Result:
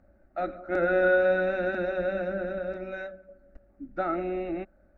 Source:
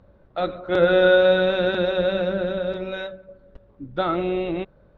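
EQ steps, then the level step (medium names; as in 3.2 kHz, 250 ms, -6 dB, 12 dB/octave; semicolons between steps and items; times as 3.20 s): static phaser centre 680 Hz, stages 8; -3.5 dB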